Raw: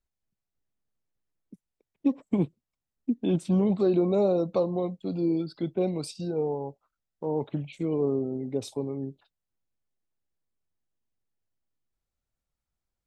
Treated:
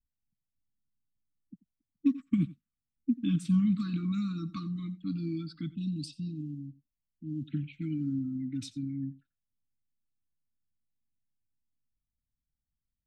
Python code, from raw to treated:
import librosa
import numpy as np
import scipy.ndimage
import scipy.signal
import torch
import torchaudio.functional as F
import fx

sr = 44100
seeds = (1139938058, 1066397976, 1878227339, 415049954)

y = fx.env_lowpass(x, sr, base_hz=340.0, full_db=-25.0)
y = fx.brickwall_bandstop(y, sr, low_hz=320.0, high_hz=fx.steps((0.0, 1100.0), (5.66, 2500.0), (7.48, 1300.0)))
y = y + 10.0 ** (-19.0 / 20.0) * np.pad(y, (int(88 * sr / 1000.0), 0))[:len(y)]
y = y * librosa.db_to_amplitude(-1.0)